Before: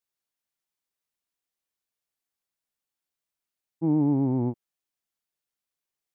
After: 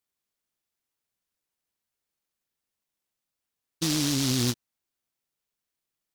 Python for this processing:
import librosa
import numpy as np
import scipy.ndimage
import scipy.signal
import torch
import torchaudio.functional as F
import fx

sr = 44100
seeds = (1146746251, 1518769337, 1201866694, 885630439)

p1 = fx.over_compress(x, sr, threshold_db=-27.0, ratio=-0.5)
p2 = x + (p1 * librosa.db_to_amplitude(2.0))
p3 = fx.noise_mod_delay(p2, sr, seeds[0], noise_hz=4600.0, depth_ms=0.38)
y = p3 * librosa.db_to_amplitude(-6.5)